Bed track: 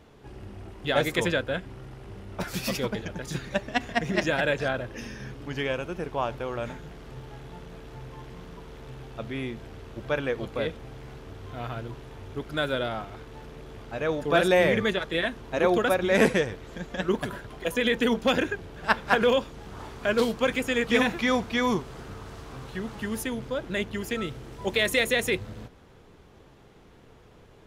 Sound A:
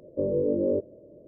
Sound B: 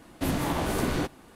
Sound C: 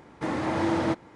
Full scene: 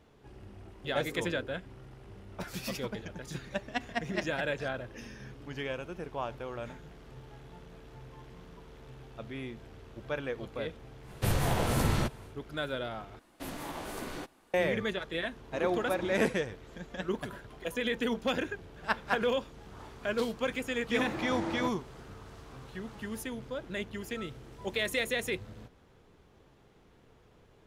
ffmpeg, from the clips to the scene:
-filter_complex "[2:a]asplit=2[s0][s1];[3:a]asplit=2[s2][s3];[0:a]volume=0.422[s4];[1:a]asuperpass=centerf=310:order=4:qfactor=1.5[s5];[s0]afreqshift=-160[s6];[s1]equalizer=f=95:w=0.43:g=-9[s7];[s4]asplit=2[s8][s9];[s8]atrim=end=13.194[s10];[s7]atrim=end=1.35,asetpts=PTS-STARTPTS,volume=0.335[s11];[s9]atrim=start=14.536[s12];[s5]atrim=end=1.27,asetpts=PTS-STARTPTS,volume=0.141,afade=t=in:d=0.004:c=hsin,afade=t=out:st=1.266:d=0.004:c=hsin,adelay=670[s13];[s6]atrim=end=1.35,asetpts=PTS-STARTPTS,volume=0.944,afade=t=in:d=0.1,afade=t=out:st=1.25:d=0.1,adelay=11010[s14];[s2]atrim=end=1.15,asetpts=PTS-STARTPTS,volume=0.15,afade=t=in:d=0.004:c=hsin,afade=t=out:st=1.146:d=0.004:c=hsin,adelay=15310[s15];[s3]atrim=end=1.15,asetpts=PTS-STARTPTS,volume=0.335,afade=t=in:d=0.004:c=hsin,afade=t=out:st=1.146:d=0.004:c=hsin,adelay=20750[s16];[s10][s11]acrossfade=d=0.004:c1=hsin:c2=hsin[s17];[s17][s12]acrossfade=d=0.004:c1=hsin:c2=hsin[s18];[s18][s13][s14][s15][s16]amix=inputs=5:normalize=0"

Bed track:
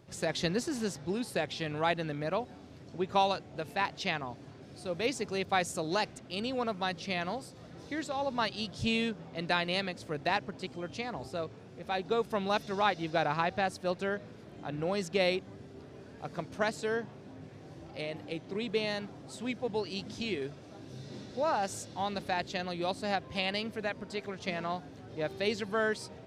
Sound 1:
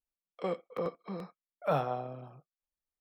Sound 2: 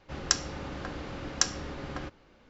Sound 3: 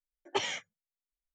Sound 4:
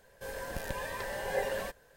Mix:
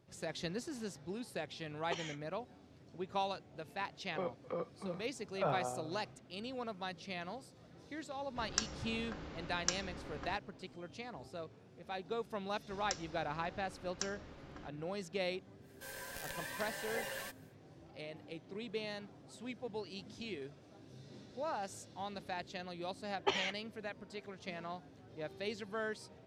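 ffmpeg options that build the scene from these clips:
-filter_complex "[3:a]asplit=2[s0][s1];[2:a]asplit=2[s2][s3];[0:a]volume=0.335[s4];[1:a]highpass=100,lowpass=3600[s5];[4:a]tiltshelf=f=890:g=-8.5[s6];[s1]lowpass=4400[s7];[s0]atrim=end=1.34,asetpts=PTS-STARTPTS,volume=0.282,afade=t=in:d=0.004:c=hsin,afade=t=out:st=1.336:d=0.004:c=hsin,adelay=1560[s8];[s5]atrim=end=3,asetpts=PTS-STARTPTS,volume=0.531,afade=t=in:d=0.004:c=hsin,afade=t=out:st=2.996:d=0.004:c=hsin,adelay=3740[s9];[s2]atrim=end=2.49,asetpts=PTS-STARTPTS,volume=0.335,afade=t=in:d=0.004:c=hsin,afade=t=out:st=2.486:d=0.004:c=hsin,adelay=8270[s10];[s3]atrim=end=2.49,asetpts=PTS-STARTPTS,volume=0.168,afade=t=in:d=0.004:c=hsin,afade=t=out:st=2.486:d=0.004:c=hsin,adelay=12600[s11];[s6]atrim=end=1.96,asetpts=PTS-STARTPTS,volume=0.355,afade=t=in:d=0.1,afade=t=out:st=1.86:d=0.1,adelay=15600[s12];[s7]atrim=end=1.34,asetpts=PTS-STARTPTS,volume=0.794,afade=t=in:d=0.004:c=hsin,afade=t=out:st=1.336:d=0.004:c=hsin,adelay=1010772S[s13];[s4][s8][s9][s10][s11][s12][s13]amix=inputs=7:normalize=0"

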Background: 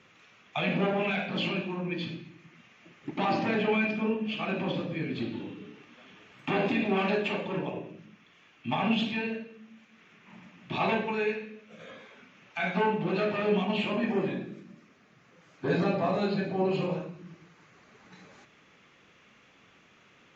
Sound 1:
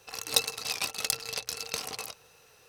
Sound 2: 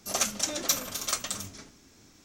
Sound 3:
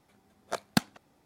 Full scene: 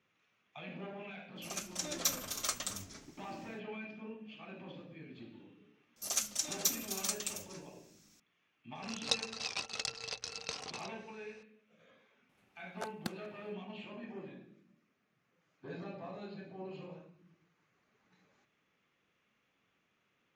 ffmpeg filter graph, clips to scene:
-filter_complex "[2:a]asplit=2[s0][s1];[0:a]volume=0.126[s2];[s0]dynaudnorm=f=300:g=3:m=3.76[s3];[s1]highshelf=f=2900:g=11[s4];[1:a]lowpass=f=6700:w=0.5412,lowpass=f=6700:w=1.3066[s5];[3:a]alimiter=limit=0.211:level=0:latency=1:release=81[s6];[s3]atrim=end=2.24,asetpts=PTS-STARTPTS,volume=0.158,afade=t=in:d=0.004:c=hsin,afade=t=out:st=2.236:d=0.004:c=hsin,adelay=1360[s7];[s4]atrim=end=2.24,asetpts=PTS-STARTPTS,volume=0.188,afade=t=in:d=0.004:c=hsin,afade=t=out:st=2.236:d=0.004:c=hsin,adelay=5960[s8];[s5]atrim=end=2.68,asetpts=PTS-STARTPTS,volume=0.501,afade=t=in:d=0.004:c=hsin,afade=t=out:st=2.676:d=0.004:c=hsin,adelay=8750[s9];[s6]atrim=end=1.25,asetpts=PTS-STARTPTS,volume=0.335,afade=t=in:d=0.004:c=hsin,afade=t=out:st=1.246:d=0.004:c=hsin,adelay=12290[s10];[s2][s7][s8][s9][s10]amix=inputs=5:normalize=0"

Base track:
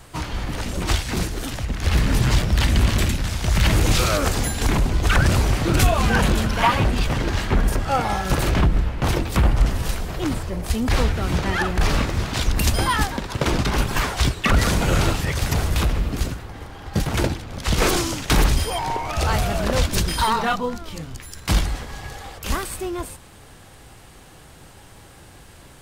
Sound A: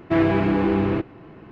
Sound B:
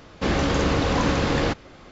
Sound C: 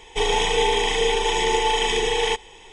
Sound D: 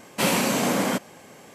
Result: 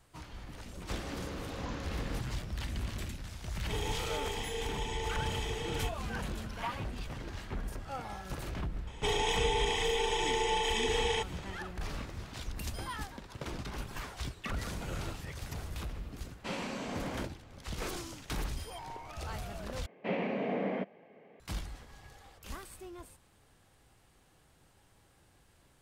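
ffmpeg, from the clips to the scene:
-filter_complex "[3:a]asplit=2[s0][s1];[4:a]asplit=2[s2][s3];[0:a]volume=0.106[s4];[2:a]alimiter=limit=0.211:level=0:latency=1:release=328[s5];[s1]alimiter=limit=0.2:level=0:latency=1:release=71[s6];[s2]lowpass=5000[s7];[s3]highpass=150,equalizer=f=190:t=q:w=4:g=5,equalizer=f=440:t=q:w=4:g=8,equalizer=f=670:t=q:w=4:g=6,equalizer=f=990:t=q:w=4:g=-5,equalizer=f=1400:t=q:w=4:g=-9,equalizer=f=2100:t=q:w=4:g=3,lowpass=f=2500:w=0.5412,lowpass=f=2500:w=1.3066[s8];[s4]asplit=2[s9][s10];[s9]atrim=end=19.864[s11];[s8]atrim=end=1.54,asetpts=PTS-STARTPTS,volume=0.237[s12];[s10]atrim=start=21.396[s13];[s5]atrim=end=1.91,asetpts=PTS-STARTPTS,volume=0.141,afade=t=in:d=0.004:c=hsin,afade=t=out:st=1.906:d=0.004:c=hsin,adelay=680[s14];[s0]atrim=end=2.72,asetpts=PTS-STARTPTS,volume=0.133,afade=t=in:d=0.004:c=hsin,afade=t=out:st=2.716:d=0.004:c=hsin,adelay=155673S[s15];[s6]atrim=end=2.72,asetpts=PTS-STARTPTS,volume=0.422,afade=t=in:d=0.004:c=hsin,afade=t=out:st=2.716:d=0.004:c=hsin,adelay=8870[s16];[s7]atrim=end=1.54,asetpts=PTS-STARTPTS,volume=0.168,afade=t=in:d=0.004:c=hsin,afade=t=out:st=1.536:d=0.004:c=hsin,adelay=16260[s17];[s11][s12]acrossfade=d=0.004:c1=hsin:c2=hsin[s18];[s18][s13]acrossfade=d=0.004:c1=hsin:c2=hsin[s19];[s19][s14][s15][s16][s17]amix=inputs=5:normalize=0"

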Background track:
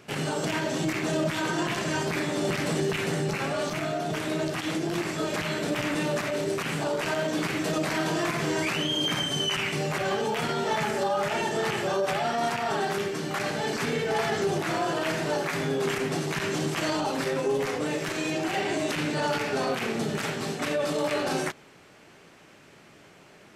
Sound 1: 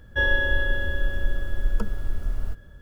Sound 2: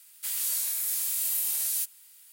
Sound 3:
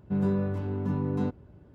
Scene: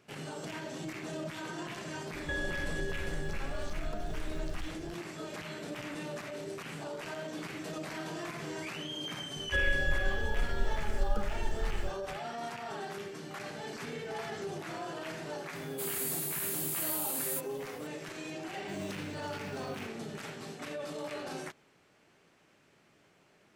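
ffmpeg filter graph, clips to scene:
-filter_complex "[1:a]asplit=2[s0][s1];[0:a]volume=0.237[s2];[s0]acompressor=threshold=0.0316:ratio=6:attack=3.2:release=140:knee=1:detection=peak[s3];[s1]asuperstop=centerf=870:order=20:qfactor=1.4[s4];[2:a]equalizer=f=5600:t=o:w=0.38:g=-9[s5];[3:a]acrusher=samples=15:mix=1:aa=0.000001[s6];[s3]atrim=end=2.81,asetpts=PTS-STARTPTS,volume=0.75,afade=t=in:d=0.004:c=hsin,afade=t=out:st=2.806:d=0.004:c=hsin,adelay=2130[s7];[s4]atrim=end=2.81,asetpts=PTS-STARTPTS,volume=0.422,afade=t=in:d=0.004:c=hsin,afade=t=out:st=2.806:d=0.004:c=hsin,adelay=9360[s8];[s5]atrim=end=2.32,asetpts=PTS-STARTPTS,volume=0.501,afade=t=in:d=0.004:c=hsin,afade=t=out:st=2.316:d=0.004:c=hsin,adelay=15550[s9];[s6]atrim=end=1.74,asetpts=PTS-STARTPTS,volume=0.141,afade=t=in:d=0.004:c=hsin,afade=t=out:st=1.736:d=0.004:c=hsin,adelay=18570[s10];[s2][s7][s8][s9][s10]amix=inputs=5:normalize=0"

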